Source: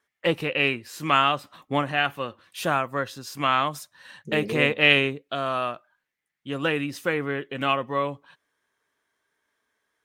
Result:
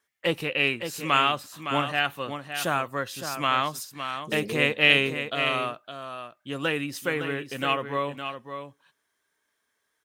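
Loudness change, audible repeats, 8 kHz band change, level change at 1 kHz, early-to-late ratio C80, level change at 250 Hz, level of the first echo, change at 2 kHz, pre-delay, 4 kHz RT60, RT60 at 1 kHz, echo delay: −1.5 dB, 1, +4.0 dB, −2.0 dB, no reverb audible, −2.5 dB, −8.5 dB, −0.5 dB, no reverb audible, no reverb audible, no reverb audible, 562 ms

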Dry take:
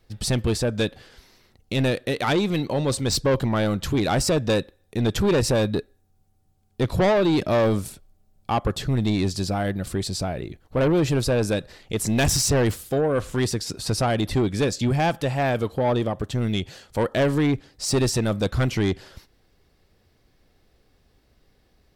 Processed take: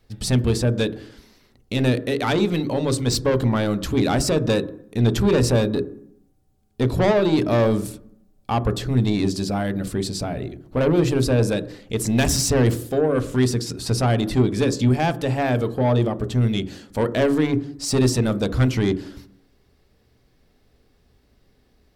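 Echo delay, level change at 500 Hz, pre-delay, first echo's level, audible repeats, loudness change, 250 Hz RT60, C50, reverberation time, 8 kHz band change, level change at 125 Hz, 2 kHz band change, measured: no echo audible, +1.5 dB, 3 ms, no echo audible, no echo audible, +2.0 dB, 0.80 s, 17.0 dB, 0.70 s, 0.0 dB, +3.0 dB, 0.0 dB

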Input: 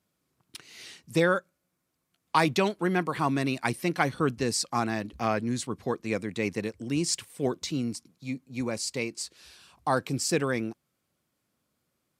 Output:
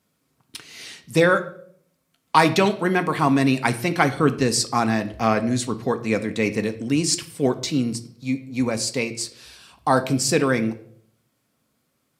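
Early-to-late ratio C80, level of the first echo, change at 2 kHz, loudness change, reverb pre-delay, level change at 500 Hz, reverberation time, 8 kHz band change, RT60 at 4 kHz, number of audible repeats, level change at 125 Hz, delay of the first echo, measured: 18.0 dB, no echo audible, +7.0 dB, +7.5 dB, 4 ms, +7.0 dB, 0.65 s, +7.0 dB, 0.50 s, no echo audible, +7.0 dB, no echo audible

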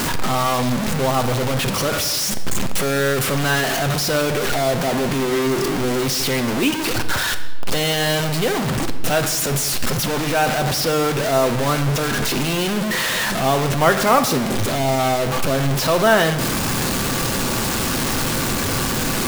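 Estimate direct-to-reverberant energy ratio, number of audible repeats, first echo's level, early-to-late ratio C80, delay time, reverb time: 7.5 dB, no echo audible, no echo audible, 13.0 dB, no echo audible, 1.5 s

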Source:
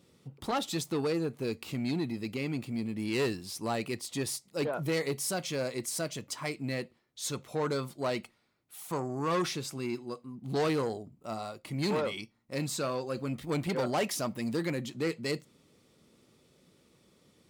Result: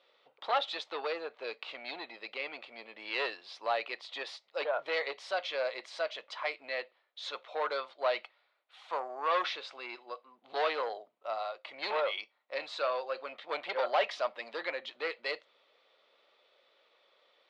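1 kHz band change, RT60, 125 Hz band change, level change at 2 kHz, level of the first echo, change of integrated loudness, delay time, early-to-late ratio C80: +3.0 dB, no reverb audible, below −40 dB, +3.0 dB, no echo audible, −2.0 dB, no echo audible, no reverb audible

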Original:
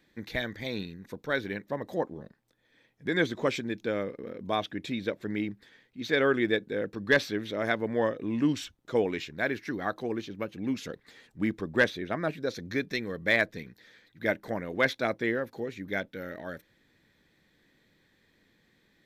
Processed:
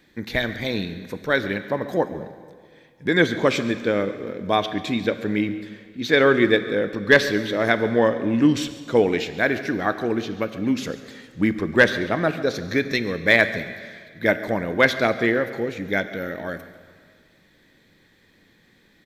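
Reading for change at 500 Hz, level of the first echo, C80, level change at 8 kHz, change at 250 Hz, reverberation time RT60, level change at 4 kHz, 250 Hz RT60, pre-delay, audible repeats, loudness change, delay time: +9.0 dB, −18.0 dB, 12.5 dB, +9.0 dB, +9.0 dB, 2.0 s, +9.0 dB, 2.1 s, 5 ms, 1, +9.0 dB, 140 ms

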